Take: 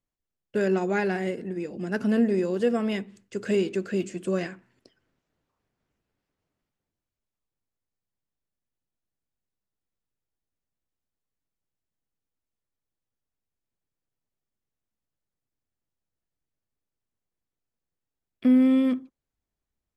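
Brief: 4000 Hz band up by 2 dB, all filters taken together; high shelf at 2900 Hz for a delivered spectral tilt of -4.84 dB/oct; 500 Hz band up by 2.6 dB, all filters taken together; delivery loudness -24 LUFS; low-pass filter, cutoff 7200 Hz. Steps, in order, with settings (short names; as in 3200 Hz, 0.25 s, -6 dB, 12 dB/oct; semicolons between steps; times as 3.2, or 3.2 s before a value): LPF 7200 Hz; bell 500 Hz +3.5 dB; high shelf 2900 Hz -4.5 dB; bell 4000 Hz +7 dB; gain +0.5 dB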